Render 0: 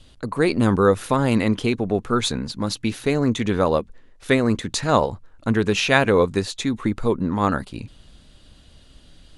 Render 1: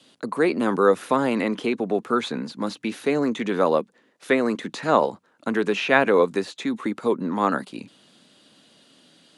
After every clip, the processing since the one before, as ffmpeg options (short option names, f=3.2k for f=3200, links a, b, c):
-filter_complex "[0:a]acrossover=split=2900[a][b];[b]acompressor=threshold=-40dB:ratio=4:attack=1:release=60[c];[a][c]amix=inputs=2:normalize=0,highpass=f=190:w=0.5412,highpass=f=190:w=1.3066,acrossover=split=290[d][e];[d]alimiter=level_in=1dB:limit=-24dB:level=0:latency=1,volume=-1dB[f];[f][e]amix=inputs=2:normalize=0"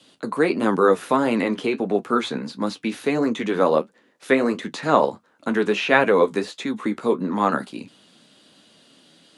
-af "flanger=delay=9.1:depth=6.1:regen=-48:speed=1.5:shape=triangular,volume=5.5dB"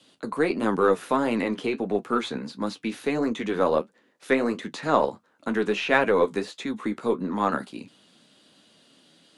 -af "aeval=exprs='0.891*(cos(1*acos(clip(val(0)/0.891,-1,1)))-cos(1*PI/2))+0.0126*(cos(8*acos(clip(val(0)/0.891,-1,1)))-cos(8*PI/2))':c=same,volume=-4dB"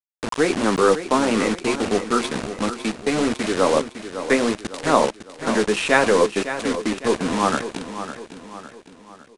-af "acrusher=bits=4:mix=0:aa=0.000001,aecho=1:1:556|1112|1668|2224|2780:0.282|0.13|0.0596|0.0274|0.0126,aresample=22050,aresample=44100,volume=4dB"